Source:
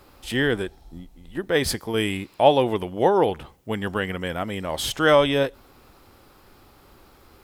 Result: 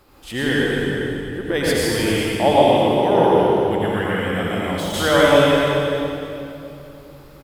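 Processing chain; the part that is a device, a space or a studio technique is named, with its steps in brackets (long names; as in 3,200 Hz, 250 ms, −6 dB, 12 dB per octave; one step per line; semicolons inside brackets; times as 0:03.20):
cave (single-tap delay 399 ms −13 dB; convolution reverb RT60 2.9 s, pre-delay 80 ms, DRR −6.5 dB)
0:03.29–0:04.94: de-essing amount 55%
level −2.5 dB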